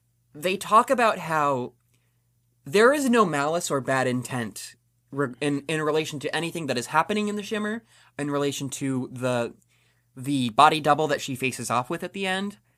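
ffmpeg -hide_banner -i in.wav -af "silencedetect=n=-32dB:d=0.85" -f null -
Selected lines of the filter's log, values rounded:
silence_start: 1.68
silence_end: 2.67 | silence_duration: 0.99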